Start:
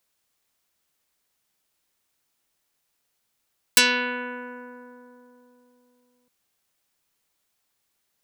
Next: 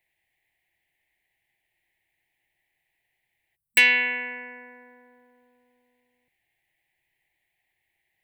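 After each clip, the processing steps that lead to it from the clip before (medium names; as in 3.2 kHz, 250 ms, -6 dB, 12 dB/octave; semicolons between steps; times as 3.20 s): spectral selection erased 3.56–3.77 s, 220–7800 Hz; FFT filter 140 Hz 0 dB, 240 Hz -13 dB, 340 Hz -1 dB, 490 Hz -10 dB, 790 Hz +2 dB, 1.3 kHz -26 dB, 1.9 kHz +11 dB, 5.5 kHz -20 dB, 11 kHz -11 dB; trim +3 dB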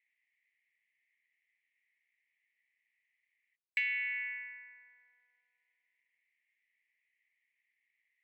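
compression 4:1, threshold -28 dBFS, peak gain reduction 13 dB; ladder band-pass 2.3 kHz, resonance 65%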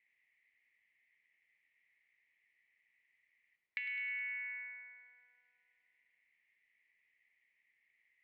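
compression 4:1, threshold -45 dBFS, peak gain reduction 13.5 dB; distance through air 230 m; thinning echo 104 ms, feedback 60%, high-pass 990 Hz, level -10 dB; trim +6.5 dB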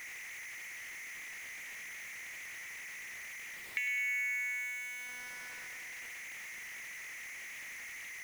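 jump at every zero crossing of -43.5 dBFS; trim +3.5 dB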